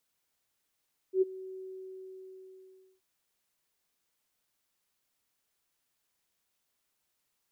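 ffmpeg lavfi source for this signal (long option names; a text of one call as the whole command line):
ffmpeg -f lavfi -i "aevalsrc='0.1*sin(2*PI*377*t)':duration=1.88:sample_rate=44100,afade=type=in:duration=0.087,afade=type=out:start_time=0.087:duration=0.021:silence=0.1,afade=type=out:start_time=0.43:duration=1.45" out.wav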